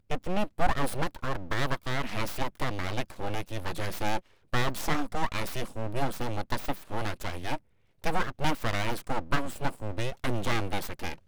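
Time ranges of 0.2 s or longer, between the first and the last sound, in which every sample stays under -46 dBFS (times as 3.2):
4.2–4.53
7.58–8.04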